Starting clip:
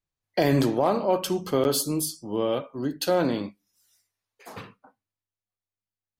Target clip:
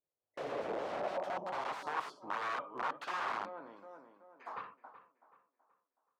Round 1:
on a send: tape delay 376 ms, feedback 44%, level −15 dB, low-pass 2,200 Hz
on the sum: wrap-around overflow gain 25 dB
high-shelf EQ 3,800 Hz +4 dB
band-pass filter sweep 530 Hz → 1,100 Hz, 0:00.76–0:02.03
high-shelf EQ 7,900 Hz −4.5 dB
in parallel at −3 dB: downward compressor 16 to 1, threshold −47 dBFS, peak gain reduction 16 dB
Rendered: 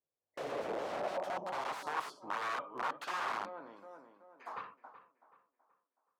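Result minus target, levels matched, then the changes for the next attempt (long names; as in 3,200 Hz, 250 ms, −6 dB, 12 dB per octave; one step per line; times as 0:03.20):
8,000 Hz band +5.0 dB
change: second high-shelf EQ 7,900 Hz −16.5 dB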